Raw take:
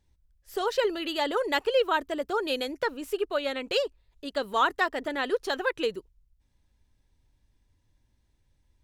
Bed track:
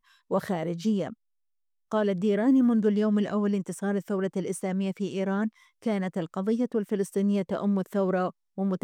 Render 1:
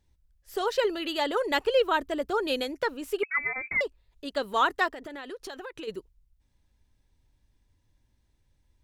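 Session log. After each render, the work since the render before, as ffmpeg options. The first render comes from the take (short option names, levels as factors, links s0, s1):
-filter_complex "[0:a]asettb=1/sr,asplit=3[s0][s1][s2];[s0]atrim=end=1.514[s3];[s1]atrim=start=1.51:end=2.64,asetpts=PTS-STARTPTS,afade=t=in:d=0.004:c=qsin,afade=t=out:st=1.126:d=0.004:c=qsin,lowshelf=f=190:g=6[s4];[s2]atrim=start=2.636[s5];[s3][s4]acrossfade=d=0.004:c1=hsin:c2=qsin[s6];[s6][s5]acrossfade=d=0.004:c1=qsin:c2=hsin,asettb=1/sr,asplit=3[s7][s8][s9];[s7]atrim=end=3.234[s10];[s8]atrim=start=3.23:end=3.81,asetpts=PTS-STARTPTS,afade=t=in:d=0.004:c=qsin,afade=t=out:st=0.576:d=0.004:c=qsin,lowpass=f=2200:t=q:w=0.5098,lowpass=f=2200:t=q:w=0.6013,lowpass=f=2200:t=q:w=0.9,lowpass=f=2200:t=q:w=2.563,afreqshift=-2600[s11];[s9]atrim=start=3.806[s12];[s10][s11]acrossfade=d=0.004:c1=hsin:c2=qsin[s13];[s13][s12]acrossfade=d=0.004:c1=qsin:c2=hsin,asplit=3[s14][s15][s16];[s14]afade=t=out:st=4.92:d=0.02[s17];[s15]acompressor=threshold=0.0158:ratio=8:attack=3.2:release=140:knee=1:detection=peak,afade=t=in:st=4.92:d=0.02,afade=t=out:st=5.87:d=0.02[s18];[s16]afade=t=in:st=5.87:d=0.02[s19];[s17][s18][s19]amix=inputs=3:normalize=0"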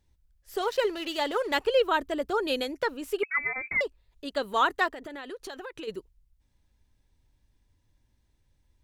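-filter_complex "[0:a]asettb=1/sr,asplit=3[s0][s1][s2];[s0]atrim=end=0.624[s3];[s1]atrim=start=0.62:end=1.59,asetpts=PTS-STARTPTS,afade=t=in:d=0.004:c=qsin,afade=t=out:st=0.966:d=0.004:c=qsin,aeval=exprs='sgn(val(0))*max(abs(val(0))-0.00596,0)':c=same[s4];[s2]atrim=start=1.586[s5];[s3][s4]acrossfade=d=0.004:c1=hsin:c2=qsin[s6];[s6][s5]acrossfade=d=0.004:c1=qsin:c2=hsin,asettb=1/sr,asplit=3[s7][s8][s9];[s7]atrim=end=4.314[s10];[s8]atrim=start=4.31:end=5.47,asetpts=PTS-STARTPTS,afade=t=in:d=0.004:c=qsin,afade=t=out:st=1.156:d=0.004:c=qsin,bandreject=f=5300:w=12[s11];[s9]atrim=start=5.466[s12];[s10][s11]acrossfade=d=0.004:c1=hsin:c2=qsin[s13];[s13][s12]acrossfade=d=0.004:c1=qsin:c2=hsin"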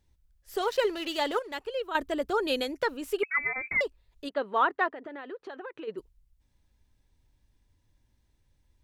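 -filter_complex "[0:a]asplit=3[s0][s1][s2];[s0]afade=t=out:st=4.28:d=0.02[s3];[s1]highpass=220,lowpass=2000,afade=t=in:st=4.28:d=0.02,afade=t=out:st=5.97:d=0.02[s4];[s2]afade=t=in:st=5.97:d=0.02[s5];[s3][s4][s5]amix=inputs=3:normalize=0,asplit=3[s6][s7][s8];[s6]atrim=end=1.392[s9];[s7]atrim=start=1.388:end=1.952,asetpts=PTS-STARTPTS,volume=0.316[s10];[s8]atrim=start=1.948[s11];[s9][s10]acrossfade=d=0.004:c1=hsin:c2=hsin[s12];[s12][s11]acrossfade=d=0.004:c1=hsin:c2=hsin"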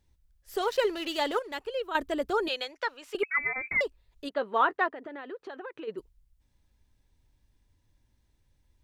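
-filter_complex "[0:a]asettb=1/sr,asplit=3[s0][s1][s2];[s0]atrim=end=2.484[s3];[s1]atrim=start=2.48:end=3.15,asetpts=PTS-STARTPTS,afade=t=in:d=0.004:c=qsin,afade=t=out:st=0.666:d=0.004:c=qsin,acrossover=split=580 6700:gain=0.0708 1 0.158[s4][s5][s6];[s4][s5][s6]amix=inputs=3:normalize=0[s7];[s2]atrim=start=3.146[s8];[s3][s7]acrossfade=d=0.004:c1=hsin:c2=qsin[s9];[s9][s8]acrossfade=d=0.004:c1=qsin:c2=hsin,asettb=1/sr,asplit=3[s10][s11][s12];[s10]atrim=end=4.364[s13];[s11]atrim=start=4.36:end=4.77,asetpts=PTS-STARTPTS,afade=t=in:d=0.004:c=qsin,afade=t=out:st=0.406:d=0.004:c=qsin,asplit=2[s14][s15];[s15]adelay=13,volume=0.251[s16];[s14][s16]amix=inputs=2:normalize=0,atrim=end_sample=18081[s17];[s12]atrim=start=4.766[s18];[s13][s17]acrossfade=d=0.004:c1=hsin:c2=qsin[s19];[s19][s18]acrossfade=d=0.004:c1=qsin:c2=hsin"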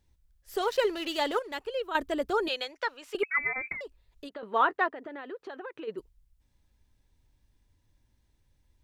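-filter_complex "[0:a]asettb=1/sr,asplit=3[s0][s1][s2];[s0]atrim=end=3.724[s3];[s1]atrim=start=3.72:end=4.43,asetpts=PTS-STARTPTS,afade=t=in:d=0.004:c=qsin,afade=t=out:st=0.706:d=0.004:c=qsin,acompressor=threshold=0.0141:ratio=8:attack=3.2:release=140:knee=1:detection=peak[s4];[s2]atrim=start=4.426[s5];[s3][s4]acrossfade=d=0.004:c1=hsin:c2=qsin[s6];[s6][s5]acrossfade=d=0.004:c1=qsin:c2=hsin"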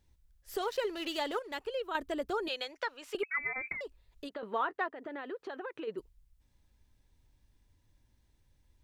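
-af "acompressor=threshold=0.0178:ratio=2"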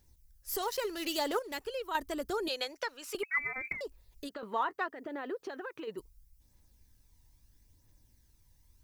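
-af "aphaser=in_gain=1:out_gain=1:delay=1.1:decay=0.33:speed=0.76:type=triangular,aexciter=amount=2.5:drive=6.2:freq=4700"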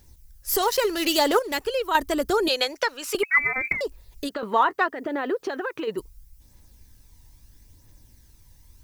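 -af "volume=3.98"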